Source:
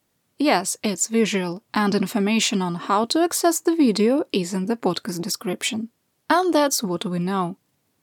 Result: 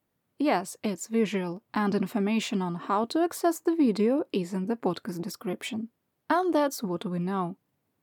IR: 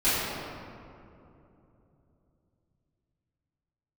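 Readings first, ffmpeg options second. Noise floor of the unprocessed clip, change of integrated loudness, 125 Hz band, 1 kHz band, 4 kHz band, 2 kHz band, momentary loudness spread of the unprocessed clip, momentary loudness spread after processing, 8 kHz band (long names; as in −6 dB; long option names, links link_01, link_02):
−71 dBFS, −6.5 dB, −5.5 dB, −6.5 dB, −13.0 dB, −8.5 dB, 7 LU, 9 LU, −15.5 dB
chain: -af "equalizer=frequency=6600:width_type=o:width=2.3:gain=-10.5,volume=-5.5dB"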